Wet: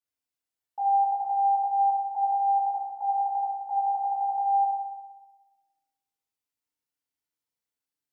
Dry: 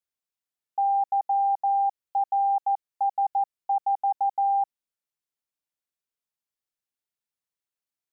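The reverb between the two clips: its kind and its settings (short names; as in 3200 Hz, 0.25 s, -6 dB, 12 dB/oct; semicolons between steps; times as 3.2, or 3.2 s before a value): FDN reverb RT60 1.2 s, low-frequency decay 1.25×, high-frequency decay 0.9×, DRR -6.5 dB; gain -7 dB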